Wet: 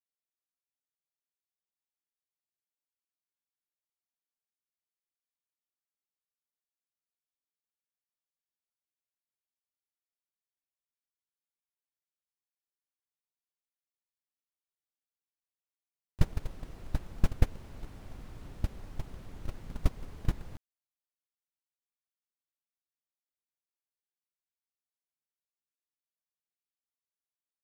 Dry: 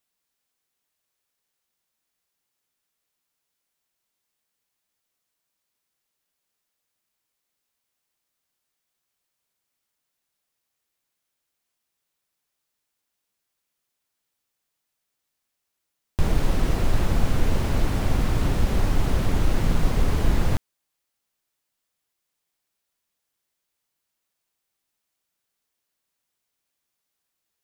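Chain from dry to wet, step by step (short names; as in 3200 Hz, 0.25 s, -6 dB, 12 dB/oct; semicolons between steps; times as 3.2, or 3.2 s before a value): gate -12 dBFS, range -32 dB; gain +7.5 dB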